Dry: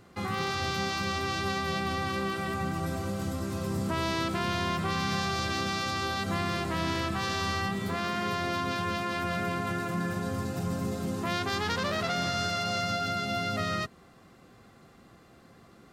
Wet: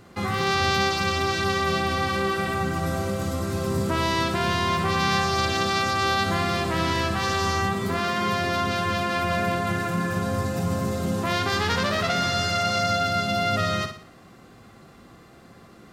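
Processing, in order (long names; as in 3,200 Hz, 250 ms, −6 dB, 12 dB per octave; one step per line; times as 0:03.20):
flutter between parallel walls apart 10.1 metres, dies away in 0.46 s
level +5.5 dB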